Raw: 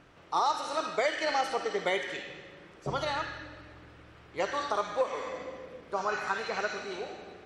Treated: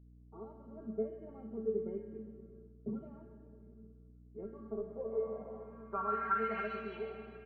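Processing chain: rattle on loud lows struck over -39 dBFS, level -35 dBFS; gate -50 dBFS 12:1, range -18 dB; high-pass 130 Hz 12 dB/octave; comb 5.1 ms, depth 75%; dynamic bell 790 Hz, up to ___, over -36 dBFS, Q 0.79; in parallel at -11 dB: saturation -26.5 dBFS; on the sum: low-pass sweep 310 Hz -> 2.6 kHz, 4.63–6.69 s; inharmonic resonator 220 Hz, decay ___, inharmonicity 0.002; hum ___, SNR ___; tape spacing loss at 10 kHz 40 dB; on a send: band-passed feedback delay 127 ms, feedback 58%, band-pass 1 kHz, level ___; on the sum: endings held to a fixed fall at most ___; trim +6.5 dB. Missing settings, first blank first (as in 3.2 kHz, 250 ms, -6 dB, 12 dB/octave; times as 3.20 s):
-3 dB, 0.22 s, 60 Hz, 20 dB, -11.5 dB, 520 dB/s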